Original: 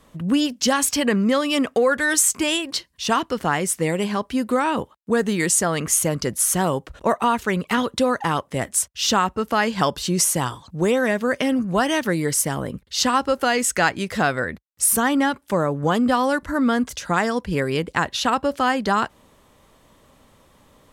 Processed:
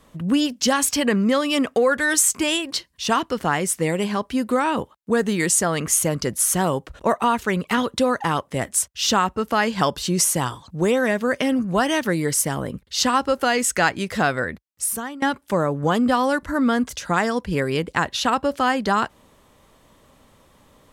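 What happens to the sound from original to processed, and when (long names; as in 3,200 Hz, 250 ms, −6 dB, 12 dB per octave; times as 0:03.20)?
0:14.47–0:15.22: fade out, to −21.5 dB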